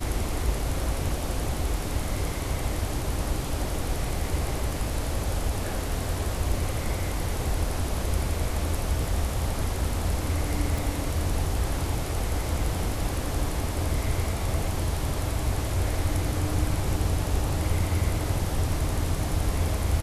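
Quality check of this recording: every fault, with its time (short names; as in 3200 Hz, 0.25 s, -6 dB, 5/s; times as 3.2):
10.78 pop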